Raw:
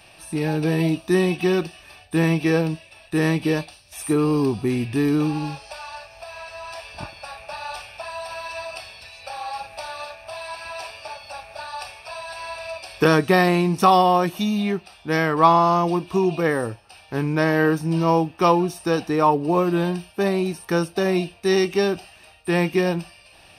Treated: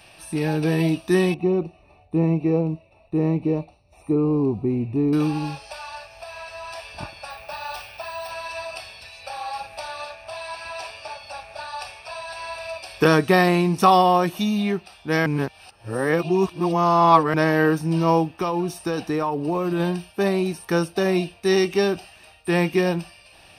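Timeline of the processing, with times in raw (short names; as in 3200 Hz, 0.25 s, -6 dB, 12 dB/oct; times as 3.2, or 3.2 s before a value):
1.34–5.13 running mean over 27 samples
7.3–8.31 careless resampling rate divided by 2×, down none, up hold
9.8–12.53 LPF 11000 Hz
15.26–17.34 reverse
18.25–19.8 compressor 10:1, threshold -19 dBFS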